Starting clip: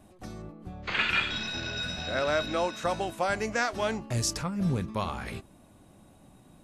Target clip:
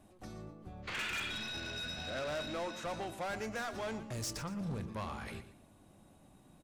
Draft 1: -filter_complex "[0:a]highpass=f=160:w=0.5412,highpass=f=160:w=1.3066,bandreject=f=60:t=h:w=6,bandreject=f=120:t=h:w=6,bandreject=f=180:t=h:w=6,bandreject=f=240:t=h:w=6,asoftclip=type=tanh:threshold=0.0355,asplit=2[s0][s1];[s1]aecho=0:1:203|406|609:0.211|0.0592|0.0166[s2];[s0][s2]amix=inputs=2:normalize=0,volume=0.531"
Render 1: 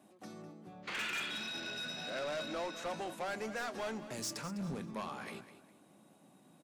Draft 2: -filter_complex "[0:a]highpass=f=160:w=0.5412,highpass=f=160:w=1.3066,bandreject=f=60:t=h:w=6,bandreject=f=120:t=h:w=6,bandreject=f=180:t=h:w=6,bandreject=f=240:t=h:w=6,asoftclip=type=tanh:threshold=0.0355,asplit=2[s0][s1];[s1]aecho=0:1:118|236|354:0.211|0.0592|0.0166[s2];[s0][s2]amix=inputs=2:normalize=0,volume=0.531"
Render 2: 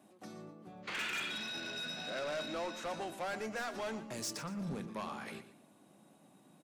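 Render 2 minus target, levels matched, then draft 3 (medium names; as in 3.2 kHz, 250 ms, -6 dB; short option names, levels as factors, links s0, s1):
125 Hz band -5.5 dB
-filter_complex "[0:a]bandreject=f=60:t=h:w=6,bandreject=f=120:t=h:w=6,bandreject=f=180:t=h:w=6,bandreject=f=240:t=h:w=6,asoftclip=type=tanh:threshold=0.0355,asplit=2[s0][s1];[s1]aecho=0:1:118|236|354:0.211|0.0592|0.0166[s2];[s0][s2]amix=inputs=2:normalize=0,volume=0.531"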